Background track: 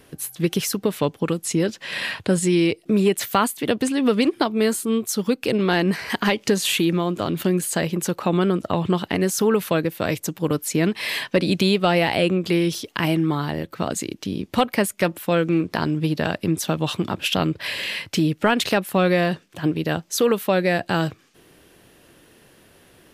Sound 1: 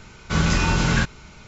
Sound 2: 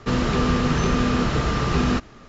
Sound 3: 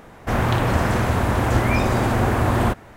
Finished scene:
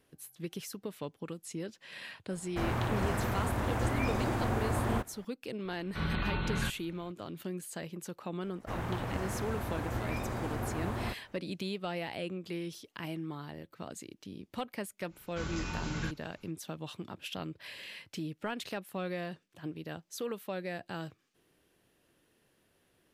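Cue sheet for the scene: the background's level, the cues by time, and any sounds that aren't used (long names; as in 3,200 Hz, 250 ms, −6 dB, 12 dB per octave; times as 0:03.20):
background track −18.5 dB
0:02.29: mix in 3 −12.5 dB
0:05.65: mix in 1 −13.5 dB + linear-phase brick-wall low-pass 4,400 Hz
0:08.40: mix in 3 −17 dB
0:15.06: mix in 1 −17.5 dB, fades 0.10 s
not used: 2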